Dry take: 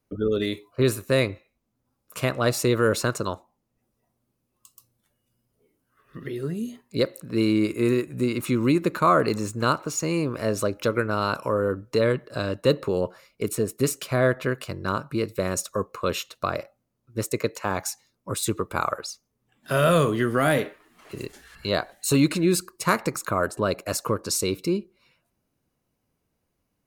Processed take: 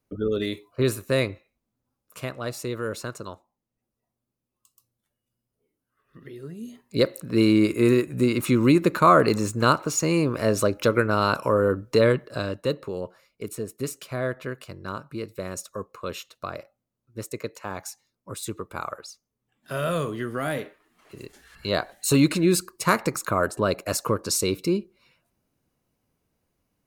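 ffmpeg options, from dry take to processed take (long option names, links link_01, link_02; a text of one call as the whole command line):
ffmpeg -i in.wav -af "volume=18.5dB,afade=type=out:start_time=1.22:duration=1.19:silence=0.421697,afade=type=in:start_time=6.58:duration=0.49:silence=0.251189,afade=type=out:start_time=12.04:duration=0.72:silence=0.316228,afade=type=in:start_time=21.21:duration=0.69:silence=0.398107" out.wav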